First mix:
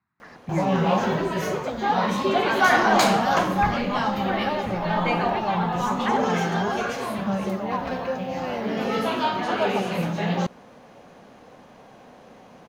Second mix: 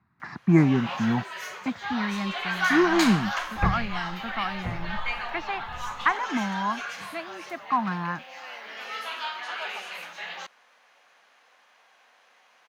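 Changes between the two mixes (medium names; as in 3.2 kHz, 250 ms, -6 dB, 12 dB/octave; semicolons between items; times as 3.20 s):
speech +8.5 dB; first sound: add Chebyshev high-pass 1.8 kHz, order 2; master: add tilt EQ -1.5 dB/octave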